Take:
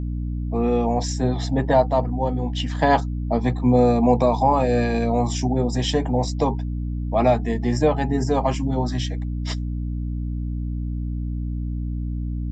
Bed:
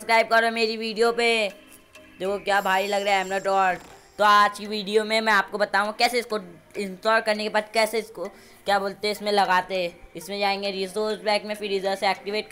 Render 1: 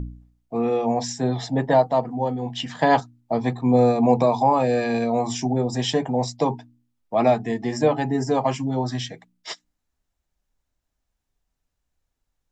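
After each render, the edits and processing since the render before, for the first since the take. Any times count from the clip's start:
hum removal 60 Hz, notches 5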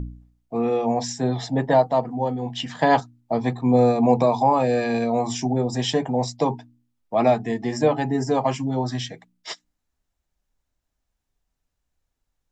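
no processing that can be heard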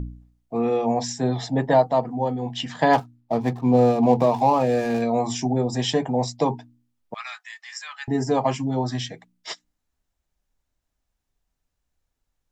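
0:02.93–0:05.02: running median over 15 samples
0:07.14–0:08.08: elliptic high-pass filter 1,300 Hz, stop band 80 dB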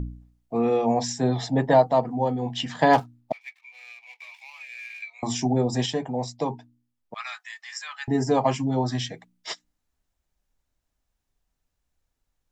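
0:03.32–0:05.23: four-pole ladder high-pass 2,200 Hz, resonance 85%
0:05.86–0:07.16: clip gain −5.5 dB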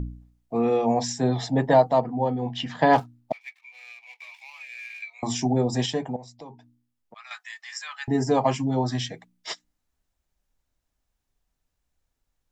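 0:02.00–0:02.96: high-frequency loss of the air 98 metres
0:06.16–0:07.31: downward compressor 2 to 1, threshold −51 dBFS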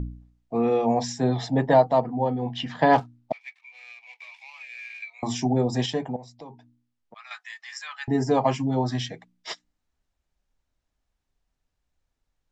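Bessel low-pass filter 6,000 Hz, order 2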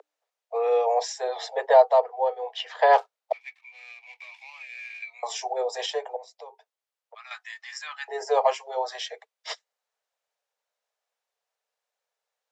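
Butterworth high-pass 430 Hz 96 dB per octave
parametric band 600 Hz +2.5 dB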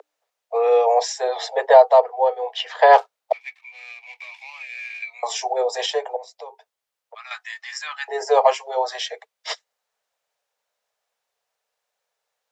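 level +6 dB
brickwall limiter −1 dBFS, peak gain reduction 2 dB

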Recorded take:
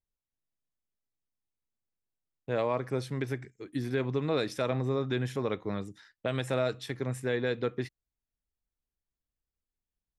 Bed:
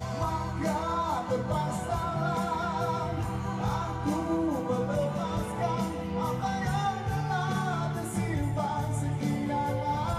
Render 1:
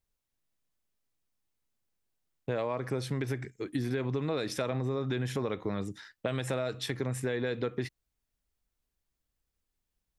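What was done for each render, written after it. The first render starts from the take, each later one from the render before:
in parallel at +1.5 dB: brickwall limiter −28.5 dBFS, peak gain reduction 11.5 dB
on the sum: downward compressor, threshold −28 dBFS, peak gain reduction 7 dB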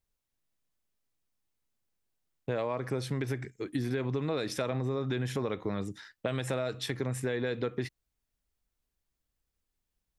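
no processing that can be heard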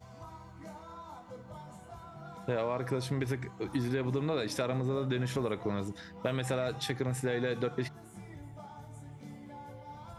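mix in bed −18 dB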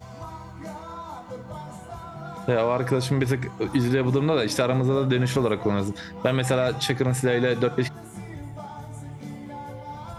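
level +10 dB

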